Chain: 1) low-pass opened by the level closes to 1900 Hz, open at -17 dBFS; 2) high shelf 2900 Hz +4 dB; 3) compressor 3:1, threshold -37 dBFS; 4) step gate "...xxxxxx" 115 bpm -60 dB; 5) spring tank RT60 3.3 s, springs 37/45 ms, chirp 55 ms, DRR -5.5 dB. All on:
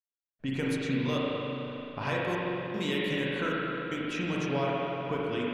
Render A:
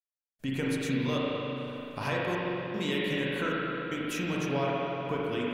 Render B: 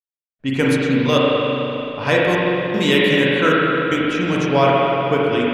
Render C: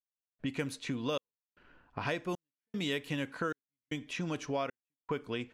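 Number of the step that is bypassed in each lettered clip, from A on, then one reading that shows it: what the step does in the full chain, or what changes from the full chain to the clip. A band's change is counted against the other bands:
1, 8 kHz band +4.0 dB; 3, mean gain reduction 12.0 dB; 5, momentary loudness spread change +1 LU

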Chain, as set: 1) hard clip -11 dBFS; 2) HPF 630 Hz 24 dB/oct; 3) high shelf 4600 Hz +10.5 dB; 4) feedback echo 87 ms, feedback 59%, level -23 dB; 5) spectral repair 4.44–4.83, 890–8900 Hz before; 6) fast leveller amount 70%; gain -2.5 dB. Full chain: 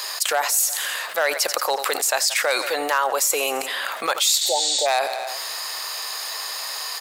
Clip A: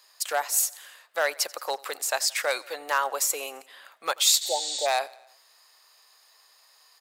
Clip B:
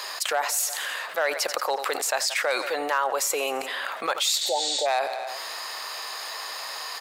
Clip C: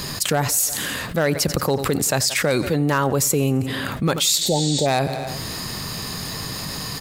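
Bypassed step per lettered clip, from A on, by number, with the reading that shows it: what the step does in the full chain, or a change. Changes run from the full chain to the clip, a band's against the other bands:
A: 6, momentary loudness spread change +5 LU; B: 3, 8 kHz band -3.5 dB; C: 2, 250 Hz band +19.0 dB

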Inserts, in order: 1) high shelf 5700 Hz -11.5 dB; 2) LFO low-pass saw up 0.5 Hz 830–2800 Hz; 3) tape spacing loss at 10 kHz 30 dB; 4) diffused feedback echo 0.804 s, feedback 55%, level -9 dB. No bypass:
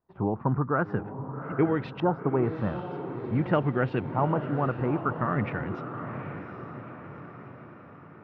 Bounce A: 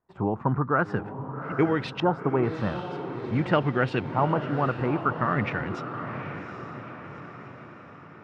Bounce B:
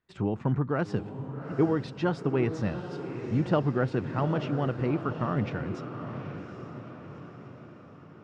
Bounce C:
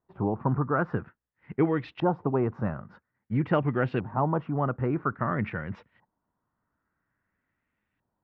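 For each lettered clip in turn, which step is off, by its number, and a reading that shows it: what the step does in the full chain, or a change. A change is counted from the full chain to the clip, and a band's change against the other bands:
3, 4 kHz band +8.0 dB; 2, 4 kHz band +4.5 dB; 4, echo-to-direct -7.5 dB to none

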